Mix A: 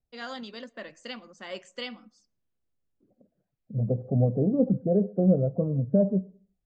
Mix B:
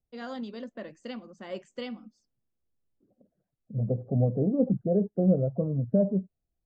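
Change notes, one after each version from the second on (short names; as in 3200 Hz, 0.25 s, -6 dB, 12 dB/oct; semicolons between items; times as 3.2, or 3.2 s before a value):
first voice: add tilt shelf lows +7 dB, about 790 Hz; reverb: off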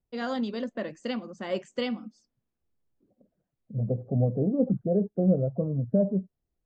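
first voice +7.0 dB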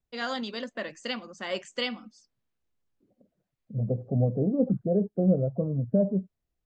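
first voice: add tilt shelf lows -7 dB, about 790 Hz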